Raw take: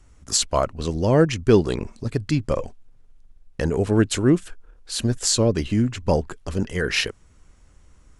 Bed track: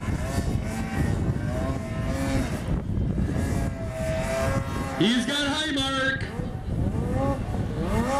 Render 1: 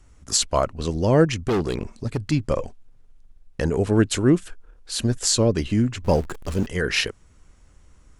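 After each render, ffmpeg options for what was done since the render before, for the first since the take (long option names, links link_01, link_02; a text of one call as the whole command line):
ffmpeg -i in.wav -filter_complex "[0:a]asettb=1/sr,asplit=3[link_01][link_02][link_03];[link_01]atrim=end=1.434[link_04];[link_02]atrim=start=1.43:end=2.32,asetpts=PTS-STARTPTS,afade=type=in:duration=0.004:curve=qsin,afade=type=out:start_time=0.886:duration=0.004:curve=qsin,asoftclip=type=hard:threshold=-18.5dB[link_05];[link_03]atrim=start=2.316[link_06];[link_04][link_05]acrossfade=duration=0.004:curve1=hsin:curve2=qsin[link_07];[link_07][link_06]acrossfade=duration=0.004:curve1=qsin:curve2=hsin,asettb=1/sr,asplit=3[link_08][link_09][link_10];[link_08]atrim=end=6.034[link_11];[link_09]atrim=start=6.03:end=6.67,asetpts=PTS-STARTPTS,afade=type=in:duration=0.004:curve=qsin,afade=type=out:start_time=0.636:duration=0.004:curve=qsin,aeval=exprs='val(0)+0.5*0.02*sgn(val(0))':channel_layout=same[link_12];[link_10]atrim=start=6.666[link_13];[link_11][link_12]acrossfade=duration=0.004:curve1=hsin:curve2=qsin[link_14];[link_14][link_13]acrossfade=duration=0.004:curve1=qsin:curve2=hsin" out.wav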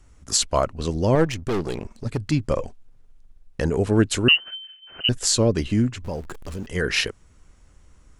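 ffmpeg -i in.wav -filter_complex "[0:a]asettb=1/sr,asplit=3[link_01][link_02][link_03];[link_01]atrim=end=1.154[link_04];[link_02]atrim=start=1.15:end=2.06,asetpts=PTS-STARTPTS,afade=type=in:duration=0.004:curve=qsin,afade=type=out:start_time=0.906:duration=0.004:curve=qsin,aeval=exprs='if(lt(val(0),0),0.447*val(0),val(0))':channel_layout=same[link_05];[link_03]atrim=start=2.056[link_06];[link_04][link_05]acrossfade=duration=0.004:curve1=hsin:curve2=qsin[link_07];[link_07][link_06]acrossfade=duration=0.004:curve1=qsin:curve2=hsin,asettb=1/sr,asplit=3[link_08][link_09][link_10];[link_08]atrim=end=4.284[link_11];[link_09]atrim=start=4.28:end=5.09,asetpts=PTS-STARTPTS,afade=type=in:duration=0.004:curve=qsin,afade=type=out:start_time=0.806:duration=0.004:curve=qsin,lowpass=frequency=2600:width_type=q:width=0.5098,lowpass=frequency=2600:width_type=q:width=0.6013,lowpass=frequency=2600:width_type=q:width=0.9,lowpass=frequency=2600:width_type=q:width=2.563,afreqshift=-3100[link_12];[link_10]atrim=start=5.086[link_13];[link_11][link_12]acrossfade=duration=0.004:curve1=hsin:curve2=qsin[link_14];[link_14][link_13]acrossfade=duration=0.004:curve1=qsin:curve2=hsin,asplit=3[link_15][link_16][link_17];[link_15]afade=type=out:start_time=5.89:duration=0.02[link_18];[link_16]acompressor=threshold=-31dB:ratio=2.5:attack=3.2:release=140:knee=1:detection=peak,afade=type=in:start_time=5.89:duration=0.02,afade=type=out:start_time=6.71:duration=0.02[link_19];[link_17]afade=type=in:start_time=6.71:duration=0.02[link_20];[link_18][link_19][link_20]amix=inputs=3:normalize=0" out.wav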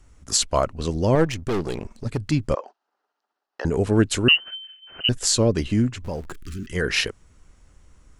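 ffmpeg -i in.wav -filter_complex "[0:a]asettb=1/sr,asplit=3[link_01][link_02][link_03];[link_01]atrim=end=2.554[link_04];[link_02]atrim=start=2.55:end=3.65,asetpts=PTS-STARTPTS,afade=type=in:duration=0.004:curve=qsin,afade=type=out:start_time=1.096:duration=0.004:curve=qsin,highpass=frequency=430:width=0.5412,highpass=frequency=430:width=1.3066,equalizer=frequency=490:width_type=q:width=4:gain=-9,equalizer=frequency=840:width_type=q:width=4:gain=5,equalizer=frequency=1300:width_type=q:width=4:gain=4,equalizer=frequency=2300:width_type=q:width=4:gain=-10,equalizer=frequency=3500:width_type=q:width=4:gain=-8,lowpass=frequency=4800:width=0.5412,lowpass=frequency=4800:width=1.3066[link_05];[link_03]atrim=start=3.646[link_06];[link_04][link_05]acrossfade=duration=0.004:curve1=hsin:curve2=qsin[link_07];[link_07][link_06]acrossfade=duration=0.004:curve1=qsin:curve2=hsin,asettb=1/sr,asplit=3[link_08][link_09][link_10];[link_08]atrim=end=6.334[link_11];[link_09]atrim=start=6.33:end=6.73,asetpts=PTS-STARTPTS,afade=type=in:duration=0.004:curve=qsin,afade=type=out:start_time=0.396:duration=0.004:curve=qsin,asuperstop=centerf=690:order=12:qfactor=0.8[link_12];[link_10]atrim=start=6.726[link_13];[link_11][link_12]acrossfade=duration=0.004:curve1=hsin:curve2=qsin[link_14];[link_14][link_13]acrossfade=duration=0.004:curve1=qsin:curve2=hsin" out.wav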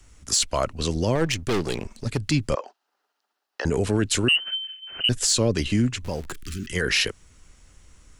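ffmpeg -i in.wav -filter_complex "[0:a]acrossover=split=150|880|1900[link_01][link_02][link_03][link_04];[link_04]acontrast=89[link_05];[link_01][link_02][link_03][link_05]amix=inputs=4:normalize=0,alimiter=limit=-12.5dB:level=0:latency=1:release=22" out.wav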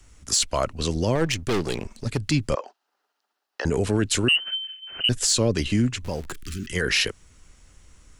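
ffmpeg -i in.wav -af anull out.wav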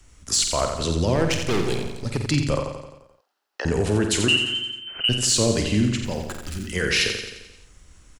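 ffmpeg -i in.wav -filter_complex "[0:a]asplit=2[link_01][link_02];[link_02]adelay=48,volume=-9dB[link_03];[link_01][link_03]amix=inputs=2:normalize=0,asplit=2[link_04][link_05];[link_05]aecho=0:1:87|174|261|348|435|522|609:0.447|0.25|0.14|0.0784|0.0439|0.0246|0.0138[link_06];[link_04][link_06]amix=inputs=2:normalize=0" out.wav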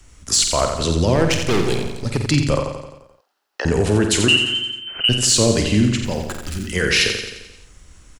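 ffmpeg -i in.wav -af "volume=4.5dB" out.wav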